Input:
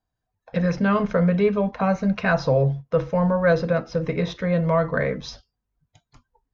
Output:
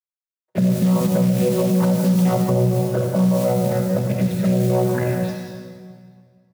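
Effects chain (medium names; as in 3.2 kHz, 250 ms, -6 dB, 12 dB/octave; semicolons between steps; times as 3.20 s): vocoder on a held chord bare fifth, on B2; touch-sensitive flanger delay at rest 6.6 ms, full sweep at -18.5 dBFS; distance through air 65 m; feedback delay 84 ms, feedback 53%, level -15 dB; in parallel at -3 dB: compression 6:1, threshold -34 dBFS, peak gain reduction 18.5 dB; on the sum: companded quantiser 6-bit; gate -48 dBFS, range -30 dB; on a send at -4.5 dB: treble shelf 4.6 kHz +11 dB + reverberation RT60 2.0 s, pre-delay 62 ms; on the sum: loudness maximiser +16.5 dB; trim -9 dB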